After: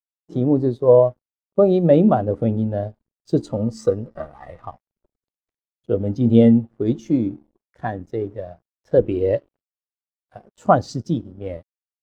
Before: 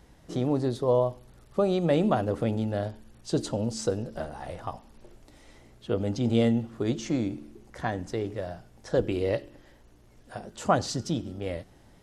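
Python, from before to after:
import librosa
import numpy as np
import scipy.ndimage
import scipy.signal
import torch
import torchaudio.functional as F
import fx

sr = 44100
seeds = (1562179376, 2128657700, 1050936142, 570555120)

y = fx.small_body(x, sr, hz=(1200.0, 1900.0), ring_ms=30, db=15, at=(3.5, 4.65))
y = np.sign(y) * np.maximum(np.abs(y) - 10.0 ** (-45.5 / 20.0), 0.0)
y = fx.spectral_expand(y, sr, expansion=1.5)
y = y * 10.0 ** (8.5 / 20.0)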